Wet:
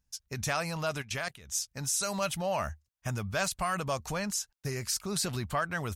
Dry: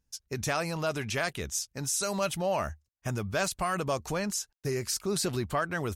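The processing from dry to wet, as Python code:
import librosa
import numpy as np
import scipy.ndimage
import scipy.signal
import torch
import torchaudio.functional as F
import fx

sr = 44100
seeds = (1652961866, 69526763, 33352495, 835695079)

y = fx.peak_eq(x, sr, hz=360.0, db=-8.0, octaves=1.0)
y = fx.level_steps(y, sr, step_db=17, at=(1.01, 1.49), fade=0.02)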